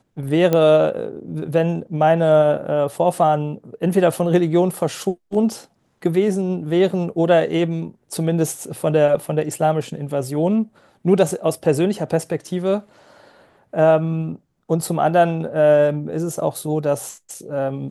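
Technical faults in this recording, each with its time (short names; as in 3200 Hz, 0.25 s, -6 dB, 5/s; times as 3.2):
0.53 pop -6 dBFS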